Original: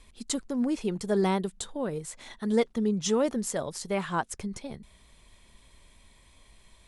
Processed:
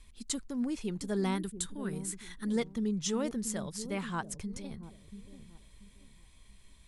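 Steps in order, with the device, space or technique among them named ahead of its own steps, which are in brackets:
0:01.35–0:02.45: graphic EQ with 15 bands 630 Hz −9 dB, 1,600 Hz +5 dB, 10,000 Hz +8 dB
smiley-face EQ (low-shelf EQ 95 Hz +5.5 dB; parametric band 590 Hz −6.5 dB 1.7 octaves; high-shelf EQ 9,700 Hz +3.5 dB)
delay with a low-pass on its return 684 ms, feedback 30%, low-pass 410 Hz, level −8.5 dB
level −4 dB

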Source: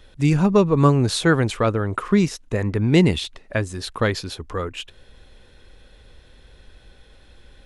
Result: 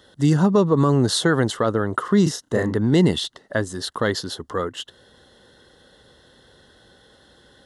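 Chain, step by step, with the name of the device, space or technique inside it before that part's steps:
PA system with an anti-feedback notch (high-pass filter 140 Hz 12 dB per octave; Butterworth band-reject 2,400 Hz, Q 2.8; brickwall limiter −10 dBFS, peak gain reduction 7.5 dB)
0:02.23–0:02.76: double-tracking delay 33 ms −4 dB
level +2.5 dB

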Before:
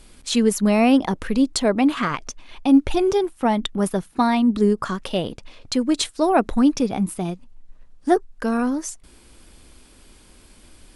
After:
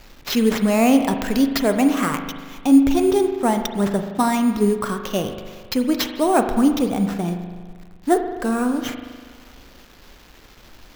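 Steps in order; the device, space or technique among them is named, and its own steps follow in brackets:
0:01.05–0:01.50: high-shelf EQ 3,100 Hz +10.5 dB
early 8-bit sampler (sample-rate reduction 9,300 Hz, jitter 0%; bit reduction 8 bits)
spring reverb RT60 1.6 s, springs 40 ms, chirp 45 ms, DRR 6.5 dB

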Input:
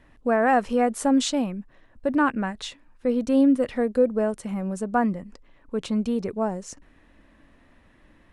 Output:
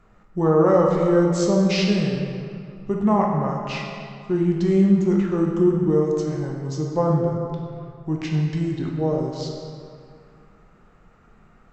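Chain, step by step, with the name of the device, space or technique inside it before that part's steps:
slowed and reverbed (speed change −29%; convolution reverb RT60 2.3 s, pre-delay 11 ms, DRR −0.5 dB)

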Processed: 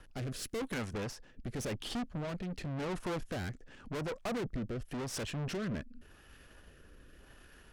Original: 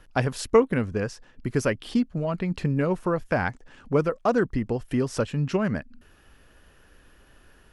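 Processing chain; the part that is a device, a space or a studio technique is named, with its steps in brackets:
0:00.42–0:00.93: spectral tilt +3 dB per octave
overdriven rotary cabinet (tube saturation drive 37 dB, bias 0.6; rotating-speaker cabinet horn 0.9 Hz)
level +3.5 dB

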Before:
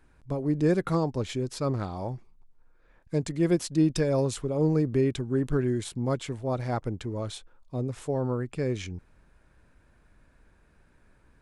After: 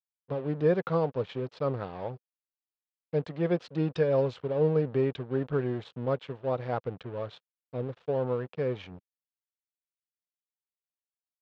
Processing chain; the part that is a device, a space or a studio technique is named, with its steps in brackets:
blown loudspeaker (dead-zone distortion −43 dBFS; loudspeaker in its box 130–3,600 Hz, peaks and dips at 220 Hz −6 dB, 320 Hz −8 dB, 490 Hz +6 dB, 2,100 Hz −4 dB)

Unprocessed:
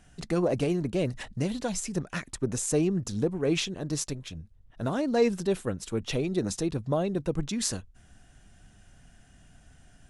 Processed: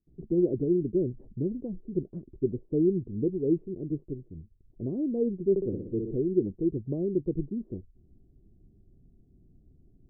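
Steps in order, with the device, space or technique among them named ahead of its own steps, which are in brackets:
noise gate with hold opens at −48 dBFS
under water (low-pass filter 400 Hz 24 dB per octave; parametric band 370 Hz +10.5 dB 0.5 octaves)
0:05.50–0:06.15: flutter between parallel walls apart 10.3 metres, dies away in 0.79 s
level −3 dB

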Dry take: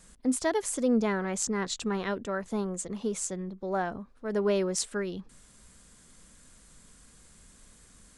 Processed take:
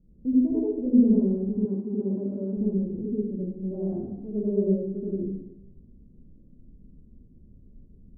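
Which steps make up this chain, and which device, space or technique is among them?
next room (low-pass filter 350 Hz 24 dB per octave; convolution reverb RT60 1.0 s, pre-delay 75 ms, DRR −8 dB)
0:01.65–0:02.57: high-pass filter 170 Hz 12 dB per octave

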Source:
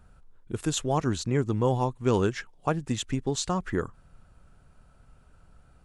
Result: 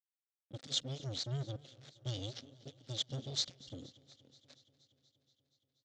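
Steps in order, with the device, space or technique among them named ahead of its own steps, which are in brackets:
0:01.56–0:02.06: high-pass filter 1,100 Hz 6 dB per octave
brick-wall band-stop 140–2,800 Hz
single-tap delay 1,112 ms −17 dB
blown loudspeaker (dead-zone distortion −42.5 dBFS; loudspeaker in its box 240–4,900 Hz, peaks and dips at 260 Hz +6 dB, 370 Hz −4 dB, 540 Hz +7 dB, 1,000 Hz −10 dB, 2,900 Hz −7 dB)
feedback echo with a swinging delay time 238 ms, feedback 72%, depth 59 cents, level −22 dB
level +4 dB

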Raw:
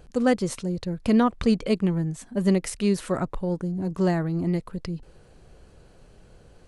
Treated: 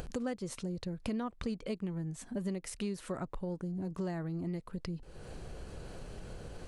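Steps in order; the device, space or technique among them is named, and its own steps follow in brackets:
upward and downward compression (upward compression, threshold −37 dBFS; downward compressor 4 to 1, threshold −38 dBFS, peak gain reduction 18.5 dB)
level +1 dB

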